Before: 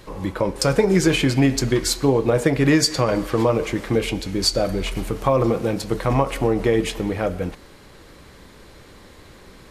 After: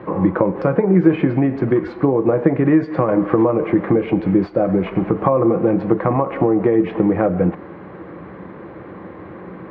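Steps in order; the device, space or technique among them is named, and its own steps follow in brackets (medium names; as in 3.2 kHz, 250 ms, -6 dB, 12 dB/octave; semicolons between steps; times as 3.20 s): bass amplifier (compression, threshold -25 dBFS, peak gain reduction 13 dB; cabinet simulation 83–2000 Hz, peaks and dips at 180 Hz +10 dB, 330 Hz +10 dB, 520 Hz +5 dB, 750 Hz +5 dB, 1.1 kHz +5 dB); trim +7 dB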